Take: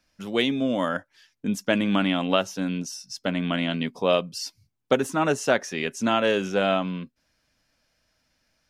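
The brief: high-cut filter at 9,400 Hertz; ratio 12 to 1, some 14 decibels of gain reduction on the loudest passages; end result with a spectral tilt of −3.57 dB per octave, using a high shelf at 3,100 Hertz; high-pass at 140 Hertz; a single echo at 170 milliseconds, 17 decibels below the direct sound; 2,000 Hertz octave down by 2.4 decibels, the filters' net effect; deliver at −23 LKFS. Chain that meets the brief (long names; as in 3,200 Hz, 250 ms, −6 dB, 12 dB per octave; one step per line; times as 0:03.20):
high-pass filter 140 Hz
low-pass filter 9,400 Hz
parametric band 2,000 Hz −7 dB
high-shelf EQ 3,100 Hz +8.5 dB
downward compressor 12 to 1, threshold −30 dBFS
single-tap delay 170 ms −17 dB
level +12 dB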